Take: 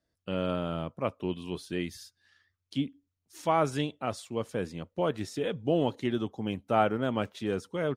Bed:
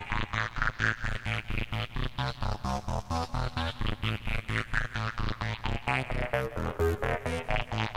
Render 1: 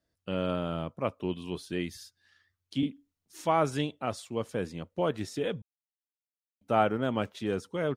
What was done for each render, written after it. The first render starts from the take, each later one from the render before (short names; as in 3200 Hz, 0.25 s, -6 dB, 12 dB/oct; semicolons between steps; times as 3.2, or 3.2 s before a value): 2.79–3.43 doubler 38 ms -2.5 dB; 5.62–6.61 mute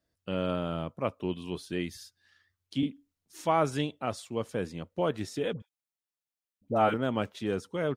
5.53–6.94 dispersion highs, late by 75 ms, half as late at 890 Hz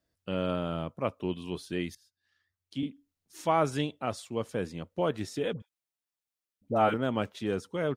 1.95–3.41 fade in, from -20.5 dB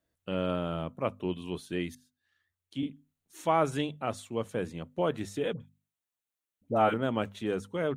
bell 5000 Hz -9 dB 0.34 oct; notches 50/100/150/200/250 Hz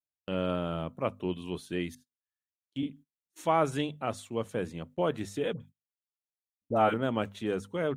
gate -50 dBFS, range -27 dB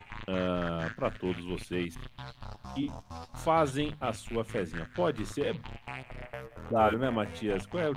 add bed -12 dB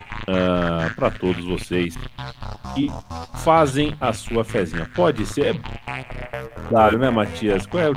gain +11.5 dB; limiter -3 dBFS, peak gain reduction 2 dB